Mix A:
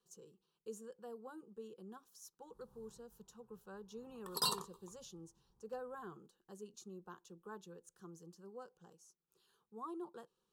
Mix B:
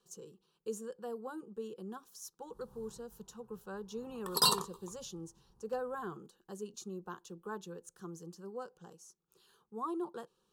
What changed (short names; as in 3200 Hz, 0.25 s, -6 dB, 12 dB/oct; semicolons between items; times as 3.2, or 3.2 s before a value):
speech +8.0 dB; background +8.0 dB